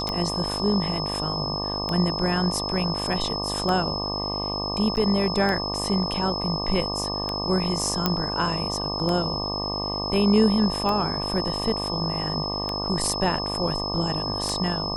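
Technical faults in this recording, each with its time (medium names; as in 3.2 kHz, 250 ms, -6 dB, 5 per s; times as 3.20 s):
buzz 50 Hz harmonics 24 -31 dBFS
tick 33 1/3 rpm -13 dBFS
whine 5.2 kHz -29 dBFS
4.96–4.97 s: dropout 9 ms
8.06 s: pop -6 dBFS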